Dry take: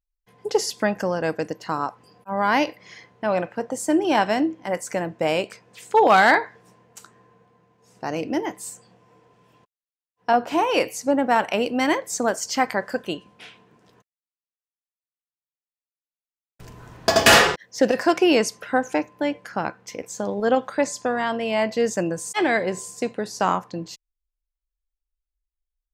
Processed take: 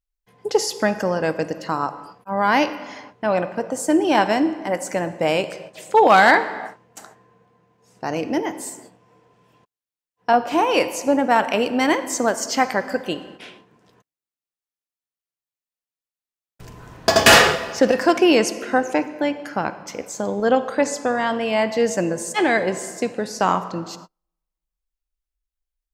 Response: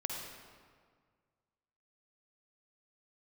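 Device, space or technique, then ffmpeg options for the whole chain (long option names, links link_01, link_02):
keyed gated reverb: -filter_complex "[0:a]asplit=3[link_01][link_02][link_03];[1:a]atrim=start_sample=2205[link_04];[link_02][link_04]afir=irnorm=-1:irlink=0[link_05];[link_03]apad=whole_len=1143866[link_06];[link_05][link_06]sidechaingate=range=-39dB:threshold=-51dB:ratio=16:detection=peak,volume=-9.5dB[link_07];[link_01][link_07]amix=inputs=2:normalize=0"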